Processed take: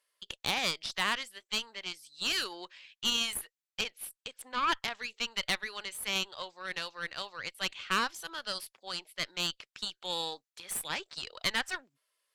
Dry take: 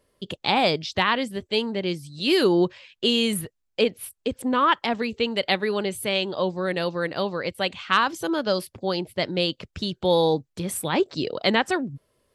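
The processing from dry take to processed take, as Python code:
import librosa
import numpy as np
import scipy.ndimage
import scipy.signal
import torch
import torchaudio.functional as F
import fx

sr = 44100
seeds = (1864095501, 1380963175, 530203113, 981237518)

y = scipy.signal.sosfilt(scipy.signal.butter(2, 1400.0, 'highpass', fs=sr, output='sos'), x)
y = fx.tube_stage(y, sr, drive_db=20.0, bias=0.8)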